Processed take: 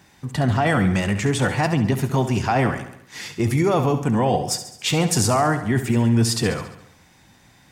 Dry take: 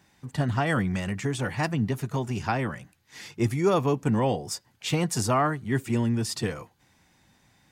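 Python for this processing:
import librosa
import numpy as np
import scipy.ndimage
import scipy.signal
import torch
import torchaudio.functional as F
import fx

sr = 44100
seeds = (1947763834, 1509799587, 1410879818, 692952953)

p1 = fx.dynamic_eq(x, sr, hz=730.0, q=3.9, threshold_db=-41.0, ratio=4.0, max_db=6)
p2 = fx.over_compress(p1, sr, threshold_db=-26.0, ratio=-0.5)
p3 = p1 + (p2 * librosa.db_to_amplitude(2.0))
y = fx.echo_feedback(p3, sr, ms=69, feedback_pct=56, wet_db=-11.0)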